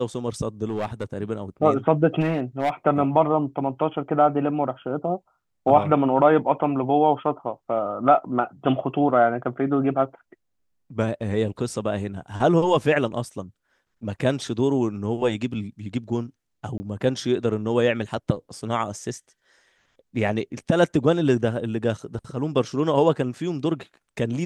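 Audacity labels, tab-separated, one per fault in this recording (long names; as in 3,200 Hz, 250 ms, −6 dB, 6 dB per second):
0.680000	1.050000	clipping −22 dBFS
2.200000	2.700000	clipping −18 dBFS
16.780000	16.800000	drop-out 20 ms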